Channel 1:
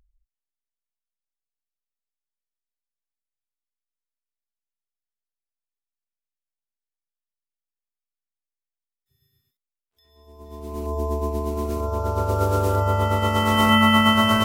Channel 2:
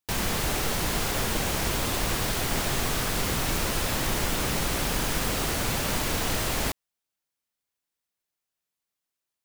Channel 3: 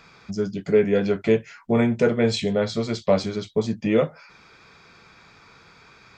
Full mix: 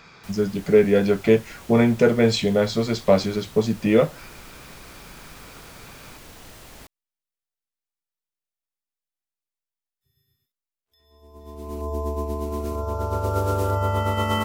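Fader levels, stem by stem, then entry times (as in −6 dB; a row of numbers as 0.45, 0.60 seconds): −2.0, −17.0, +2.5 decibels; 0.95, 0.15, 0.00 seconds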